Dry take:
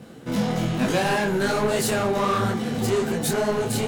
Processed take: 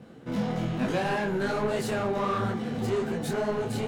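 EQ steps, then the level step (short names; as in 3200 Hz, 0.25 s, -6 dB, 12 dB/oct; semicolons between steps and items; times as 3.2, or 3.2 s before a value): high shelf 4900 Hz -12 dB; -5.0 dB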